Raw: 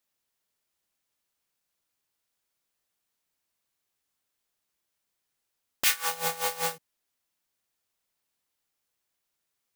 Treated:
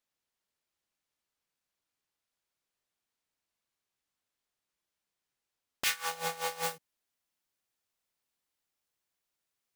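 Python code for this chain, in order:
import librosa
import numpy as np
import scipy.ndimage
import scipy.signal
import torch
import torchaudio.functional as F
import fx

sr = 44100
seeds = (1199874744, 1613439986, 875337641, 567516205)

y = fx.high_shelf(x, sr, hz=9200.0, db=fx.steps((0.0, -9.0), (6.62, -2.5)))
y = y * librosa.db_to_amplitude(-3.5)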